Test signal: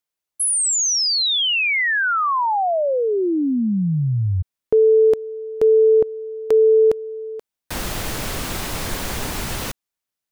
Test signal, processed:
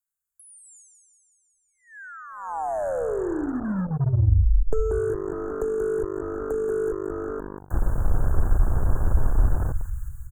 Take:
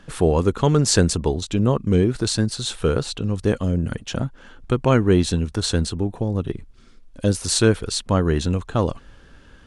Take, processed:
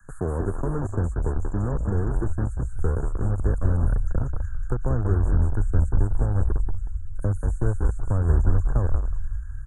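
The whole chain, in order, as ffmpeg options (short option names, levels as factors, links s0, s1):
-filter_complex "[0:a]acrossover=split=81|550[s0][s1][s2];[s0]acompressor=threshold=0.0282:ratio=4[s3];[s1]acompressor=threshold=0.0398:ratio=4[s4];[s2]acompressor=threshold=0.00891:ratio=4[s5];[s3][s4][s5]amix=inputs=3:normalize=0,asplit=9[s6][s7][s8][s9][s10][s11][s12][s13][s14];[s7]adelay=184,afreqshift=-50,volume=0.531[s15];[s8]adelay=368,afreqshift=-100,volume=0.309[s16];[s9]adelay=552,afreqshift=-150,volume=0.178[s17];[s10]adelay=736,afreqshift=-200,volume=0.104[s18];[s11]adelay=920,afreqshift=-250,volume=0.0603[s19];[s12]adelay=1104,afreqshift=-300,volume=0.0347[s20];[s13]adelay=1288,afreqshift=-350,volume=0.0202[s21];[s14]adelay=1472,afreqshift=-400,volume=0.0117[s22];[s6][s15][s16][s17][s18][s19][s20][s21][s22]amix=inputs=9:normalize=0,acrossover=split=120|1300|2800[s23][s24][s25][s26];[s24]acrusher=bits=4:mix=0:aa=0.5[s27];[s26]acompressor=threshold=0.00398:ratio=6:attack=1.4:release=318:detection=peak[s28];[s23][s27][s25][s28]amix=inputs=4:normalize=0,asubboost=boost=5.5:cutoff=85,asuperstop=centerf=3400:order=20:qfactor=0.69"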